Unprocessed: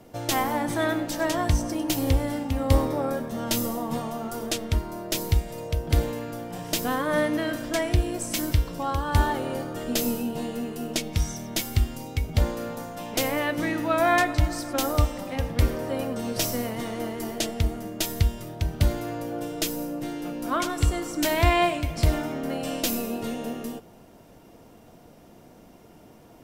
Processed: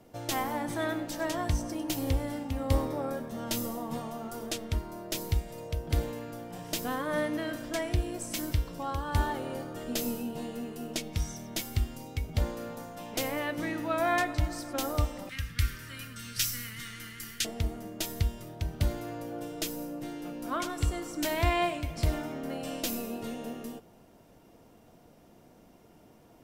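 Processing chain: 15.29–17.45 s: FFT filter 110 Hz 0 dB, 760 Hz -27 dB, 1.4 kHz +5 dB; trim -6.5 dB

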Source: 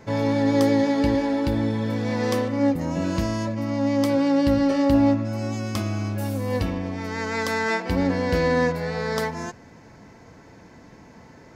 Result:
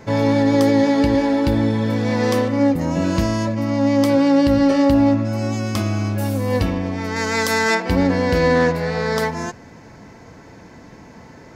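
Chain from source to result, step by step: 7.16–7.75 s: treble shelf 5.3 kHz +11 dB; loudness maximiser +11.5 dB; 8.55–9.06 s: loudspeaker Doppler distortion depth 0.12 ms; trim -6 dB

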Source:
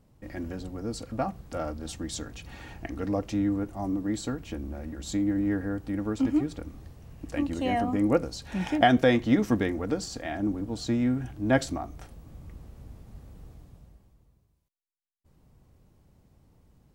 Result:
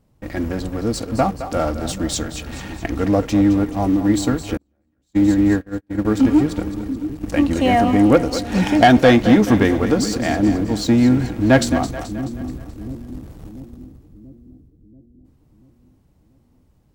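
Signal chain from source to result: waveshaping leveller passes 2; two-band feedback delay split 370 Hz, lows 686 ms, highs 215 ms, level -11 dB; 4.57–6.05 s: gate -20 dBFS, range -43 dB; trim +4.5 dB

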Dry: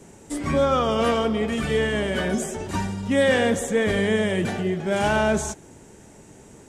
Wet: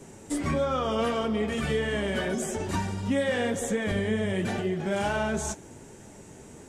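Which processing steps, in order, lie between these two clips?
3.91–4.33 s: bass shelf 210 Hz +9.5 dB; compression 4:1, threshold -25 dBFS, peak gain reduction 9.5 dB; flange 0.85 Hz, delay 7.1 ms, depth 6.2 ms, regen -47%; trim +4 dB

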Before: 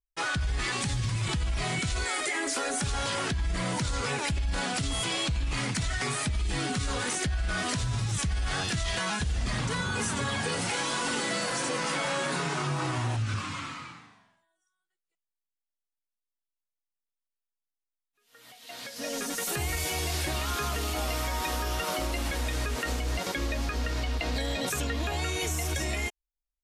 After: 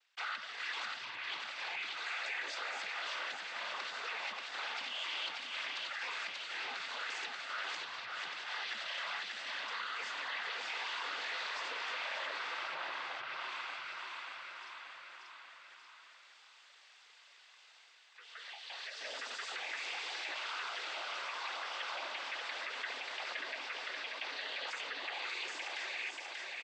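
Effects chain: reverse; upward compressor, threshold -40 dBFS; reverse; noise-vocoded speech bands 16; distance through air 390 m; feedback delay 585 ms, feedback 36%, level -6 dB; low-pass that closes with the level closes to 1.3 kHz, closed at -20 dBFS; high-pass 510 Hz 12 dB/octave; differentiator; level flattener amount 50%; trim +7 dB

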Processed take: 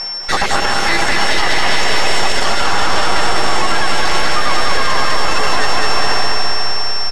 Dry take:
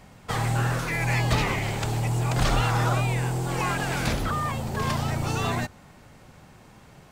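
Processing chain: random holes in the spectrogram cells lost 38%; Bessel high-pass 610 Hz, order 8; treble shelf 7.2 kHz +7 dB; half-wave rectifier; whistle 5.4 kHz -42 dBFS; distance through air 85 m; band-stop 2.4 kHz, Q 13; feedback delay 201 ms, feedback 58%, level -4 dB; gain riding within 3 dB 0.5 s; echo that smears into a reverb 513 ms, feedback 43%, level -4.5 dB; loudness maximiser +23.5 dB; trim -1 dB

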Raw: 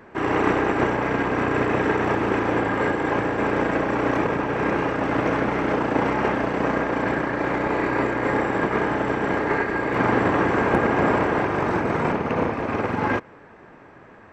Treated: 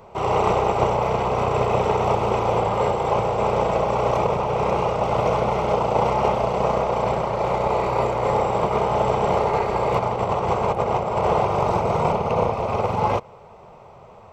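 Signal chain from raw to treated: 8.94–11.33 s: compressor with a negative ratio -22 dBFS, ratio -0.5; static phaser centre 700 Hz, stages 4; trim +6 dB

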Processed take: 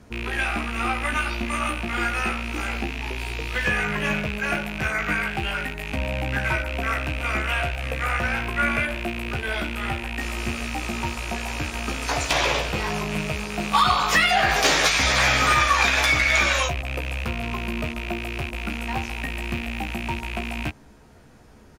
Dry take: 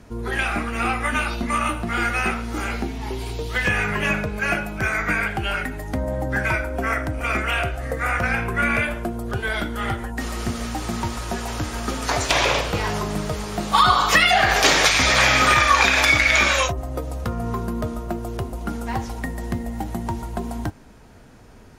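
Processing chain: rattle on loud lows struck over -30 dBFS, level -15 dBFS; hard clipper -8 dBFS, distortion -27 dB; doubling 14 ms -5 dB; trim -4 dB

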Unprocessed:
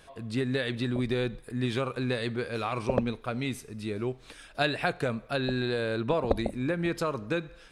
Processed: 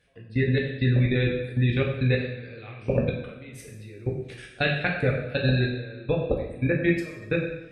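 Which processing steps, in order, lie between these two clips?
spectral gate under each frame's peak -30 dB strong; graphic EQ 125/500/1000/2000 Hz +11/+5/-11/+11 dB; level held to a coarse grid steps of 23 dB; two-slope reverb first 0.74 s, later 2.1 s, from -18 dB, DRR -2 dB

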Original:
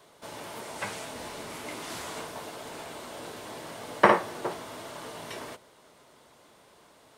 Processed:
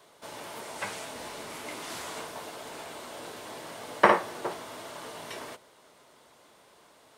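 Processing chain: bass shelf 250 Hz -5.5 dB

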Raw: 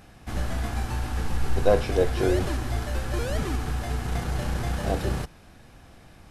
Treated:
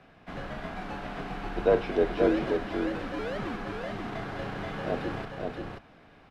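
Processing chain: three-band isolator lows -15 dB, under 170 Hz, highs -23 dB, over 3.8 kHz; frequency shift -40 Hz; delay 531 ms -4 dB; trim -2 dB

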